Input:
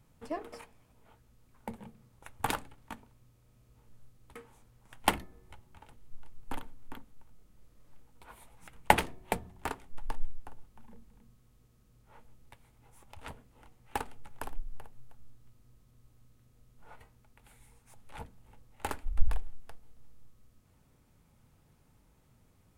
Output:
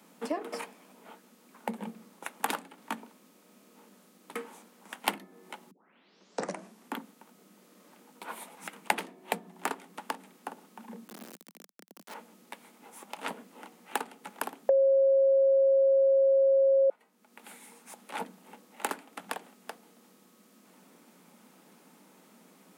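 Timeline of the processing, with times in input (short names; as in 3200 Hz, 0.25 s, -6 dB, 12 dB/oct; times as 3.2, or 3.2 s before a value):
5.71 tape start 1.24 s
11.08–12.14 companded quantiser 4-bit
14.69–16.9 bleep 542 Hz -9 dBFS
whole clip: steep high-pass 180 Hz 72 dB/oct; compressor 3:1, threshold -44 dBFS; gain +12.5 dB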